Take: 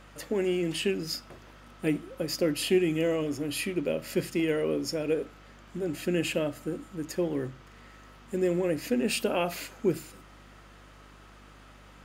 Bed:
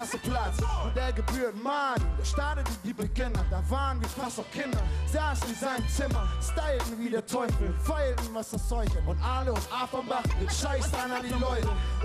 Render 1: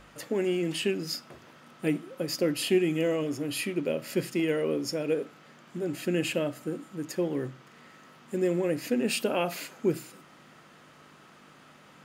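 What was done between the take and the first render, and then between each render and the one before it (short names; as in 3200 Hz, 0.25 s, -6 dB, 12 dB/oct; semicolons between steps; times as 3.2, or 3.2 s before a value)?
de-hum 50 Hz, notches 2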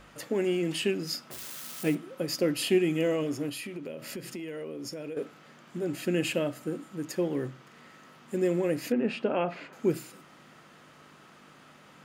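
1.31–1.95 switching spikes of -30.5 dBFS; 3.49–5.17 compressor, threshold -35 dBFS; 8.92–9.73 LPF 2100 Hz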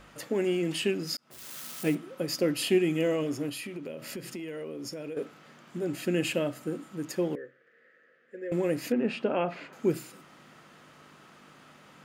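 1.17–1.58 fade in; 7.35–8.52 double band-pass 920 Hz, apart 1.8 oct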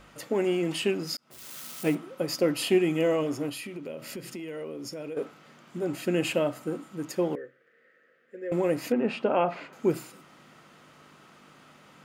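notch 1700 Hz, Q 19; dynamic EQ 890 Hz, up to +7 dB, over -44 dBFS, Q 0.97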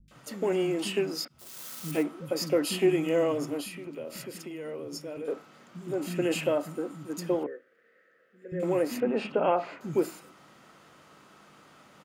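three bands offset in time lows, highs, mids 80/110 ms, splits 210/2500 Hz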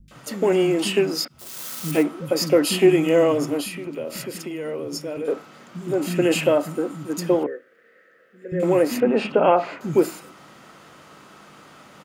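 gain +8.5 dB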